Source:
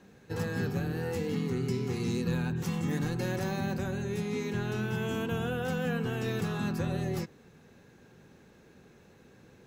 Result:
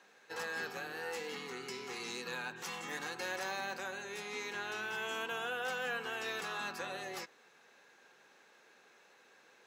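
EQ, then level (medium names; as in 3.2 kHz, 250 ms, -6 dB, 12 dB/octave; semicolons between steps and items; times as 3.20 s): high-pass 820 Hz 12 dB/octave; treble shelf 11 kHz -11 dB; +2.0 dB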